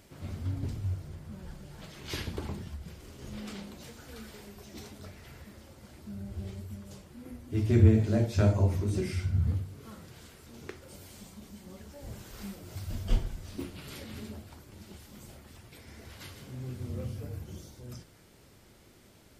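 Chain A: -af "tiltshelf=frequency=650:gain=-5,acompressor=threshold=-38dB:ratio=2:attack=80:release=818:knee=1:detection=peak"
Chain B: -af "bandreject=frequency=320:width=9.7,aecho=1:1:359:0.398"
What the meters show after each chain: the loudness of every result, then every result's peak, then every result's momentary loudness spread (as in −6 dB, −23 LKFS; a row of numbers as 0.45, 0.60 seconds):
−42.5, −32.0 LKFS; −20.5, −10.0 dBFS; 13, 23 LU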